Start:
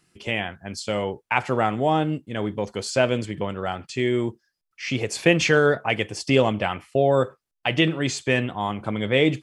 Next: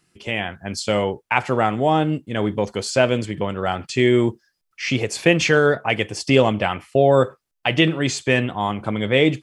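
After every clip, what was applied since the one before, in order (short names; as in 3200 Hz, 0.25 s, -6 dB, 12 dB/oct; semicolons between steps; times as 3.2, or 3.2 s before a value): AGC gain up to 7 dB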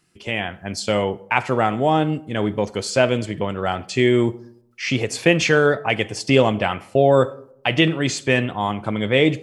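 reverb RT60 0.75 s, pre-delay 15 ms, DRR 19 dB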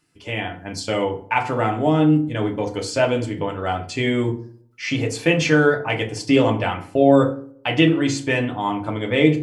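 FDN reverb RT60 0.39 s, low-frequency decay 1.45×, high-frequency decay 0.55×, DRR 1.5 dB; gain -4 dB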